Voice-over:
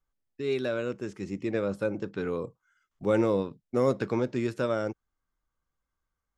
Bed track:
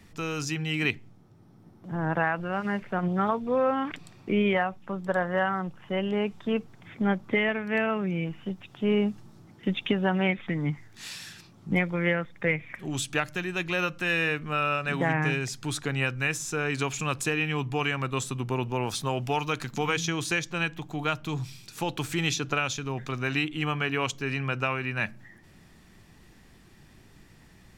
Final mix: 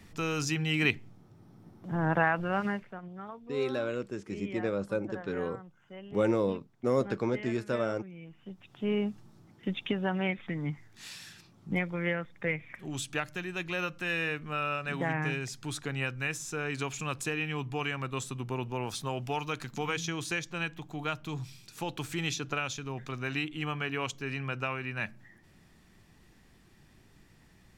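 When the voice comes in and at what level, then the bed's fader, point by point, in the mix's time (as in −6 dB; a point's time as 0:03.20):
3.10 s, −2.5 dB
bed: 0:02.64 0 dB
0:03.03 −17.5 dB
0:08.20 −17.5 dB
0:08.79 −5.5 dB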